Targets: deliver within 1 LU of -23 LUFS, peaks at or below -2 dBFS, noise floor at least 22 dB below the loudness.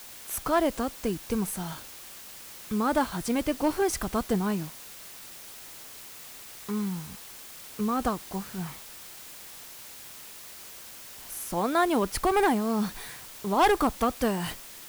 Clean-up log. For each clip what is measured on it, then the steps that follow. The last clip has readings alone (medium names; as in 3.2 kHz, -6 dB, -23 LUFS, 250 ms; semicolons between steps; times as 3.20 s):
clipped samples 0.4%; clipping level -16.5 dBFS; noise floor -45 dBFS; noise floor target -51 dBFS; loudness -28.5 LUFS; peak level -16.5 dBFS; loudness target -23.0 LUFS
-> clip repair -16.5 dBFS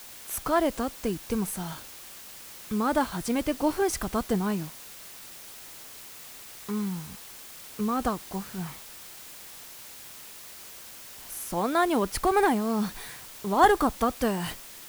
clipped samples 0.0%; noise floor -45 dBFS; noise floor target -50 dBFS
-> noise reduction 6 dB, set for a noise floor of -45 dBFS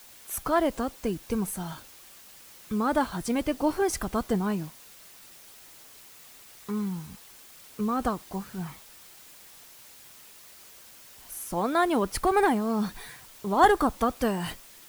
noise floor -51 dBFS; loudness -28.0 LUFS; peak level -8.0 dBFS; loudness target -23.0 LUFS
-> trim +5 dB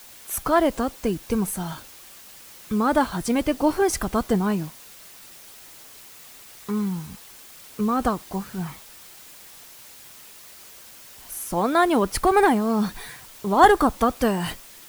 loudness -23.0 LUFS; peak level -3.0 dBFS; noise floor -46 dBFS